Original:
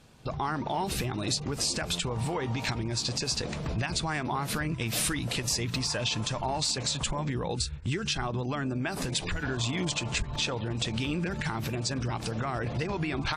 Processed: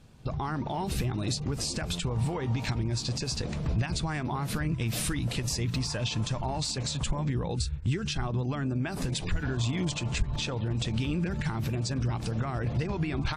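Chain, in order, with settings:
low-shelf EQ 230 Hz +10 dB
level −4 dB

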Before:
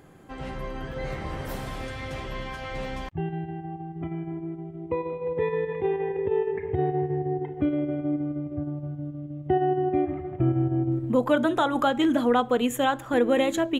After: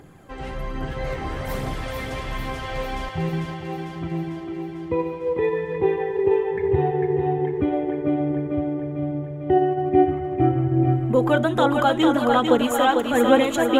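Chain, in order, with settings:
phase shifter 1.2 Hz, delay 2.7 ms, feedback 41%
feedback echo with a high-pass in the loop 448 ms, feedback 63%, high-pass 210 Hz, level −4 dB
level +2.5 dB

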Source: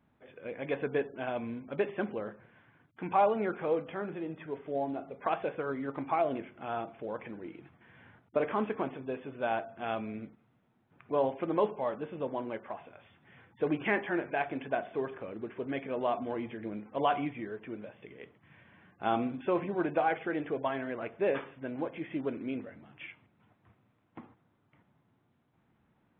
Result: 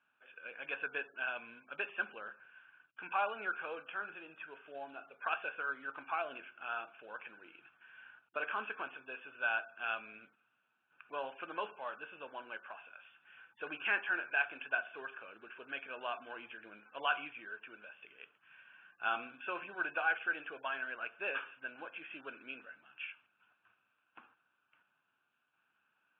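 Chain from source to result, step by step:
pair of resonant band-passes 2,000 Hz, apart 0.78 octaves
level +8 dB

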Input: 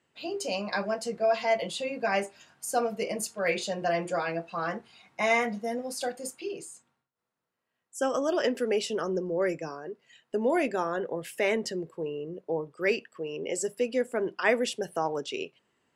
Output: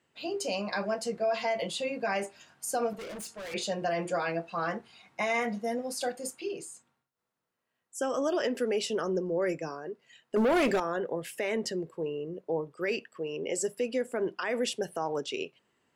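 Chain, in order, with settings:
0:10.36–0:10.80: leveller curve on the samples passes 3
brickwall limiter −21 dBFS, peak gain reduction 10.5 dB
0:02.93–0:03.54: hard clipping −39 dBFS, distortion −17 dB

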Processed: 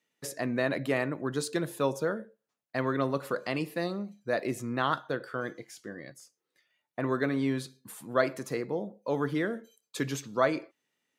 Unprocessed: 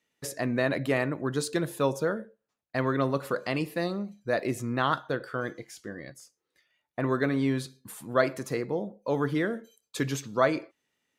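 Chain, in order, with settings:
high-pass filter 120 Hz
level −2 dB

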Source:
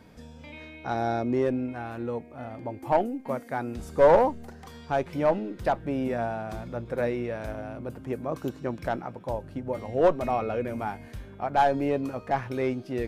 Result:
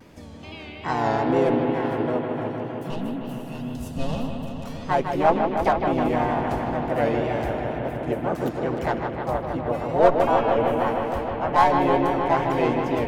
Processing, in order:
tape wow and flutter 91 cents
pitch-shifted copies added +4 semitones −2 dB
gain on a spectral selection 0:02.48–0:04.64, 300–2,500 Hz −21 dB
on a send: bucket-brigade delay 155 ms, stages 4,096, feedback 83%, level −6.5 dB
on the sum: level +2 dB

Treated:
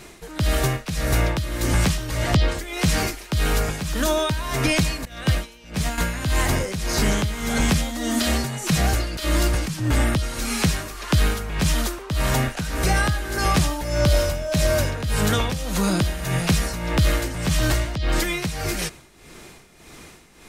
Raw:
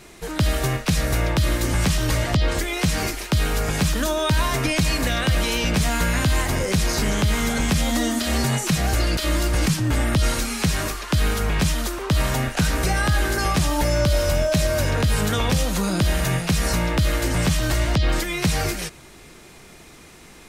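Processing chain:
amplitude tremolo 1.7 Hz, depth 73%
in parallel at −7 dB: soft clipping −20 dBFS, distortion −13 dB
0:05.05–0:05.98: on the sum: expander for the loud parts 2.5 to 1, over −26 dBFS

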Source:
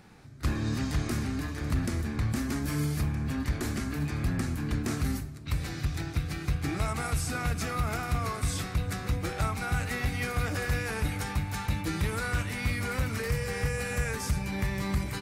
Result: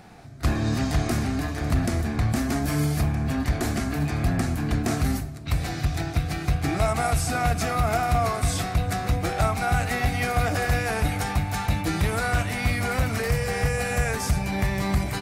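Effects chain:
parametric band 700 Hz +12.5 dB 0.28 octaves
level +5.5 dB

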